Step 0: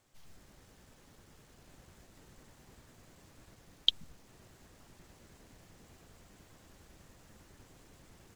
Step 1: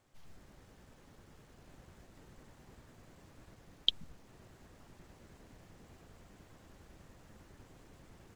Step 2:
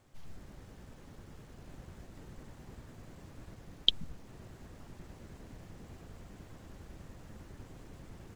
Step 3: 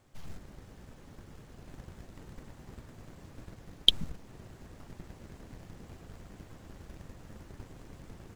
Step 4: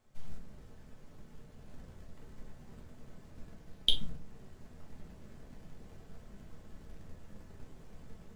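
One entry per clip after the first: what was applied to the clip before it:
high shelf 3100 Hz -7.5 dB; gain +1.5 dB
low shelf 340 Hz +5.5 dB; gain +3.5 dB
sample leveller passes 1; gain +2.5 dB
shoebox room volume 150 m³, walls furnished, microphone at 1.5 m; gain -8.5 dB

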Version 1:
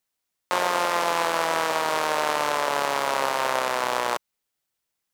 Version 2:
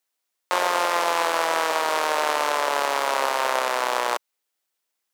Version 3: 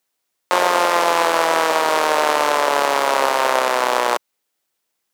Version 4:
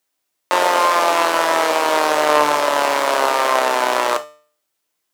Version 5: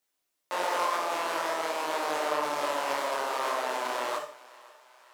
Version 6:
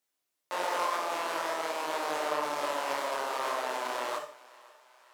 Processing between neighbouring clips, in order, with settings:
HPF 320 Hz 12 dB/oct; gain +1.5 dB
low shelf 390 Hz +7.5 dB; gain +4.5 dB
resonator 150 Hz, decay 0.47 s, harmonics all, mix 60%; non-linear reverb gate 90 ms falling, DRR 8 dB; gain +6.5 dB
limiter -13 dBFS, peak gain reduction 11.5 dB; thinning echo 0.528 s, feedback 57%, high-pass 530 Hz, level -20 dB; detuned doubles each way 49 cents; gain -2 dB
added harmonics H 7 -38 dB, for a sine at -15.5 dBFS; gain -2 dB

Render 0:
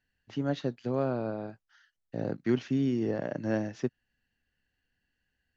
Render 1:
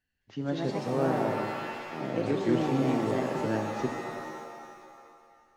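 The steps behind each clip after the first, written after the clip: AGC gain up to 3 dB; echoes that change speed 0.208 s, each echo +3 st, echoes 2; shimmer reverb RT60 2 s, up +7 st, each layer -2 dB, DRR 6 dB; gain -4 dB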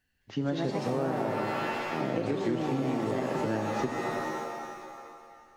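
compressor 6:1, threshold -33 dBFS, peak gain reduction 12 dB; gain +6.5 dB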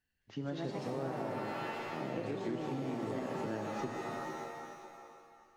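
reverb, pre-delay 3 ms, DRR 8.5 dB; gain -8.5 dB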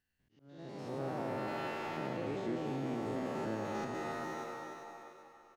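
stepped spectrum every 0.1 s; speakerphone echo 0.35 s, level -7 dB; auto swell 0.728 s; gain +1 dB

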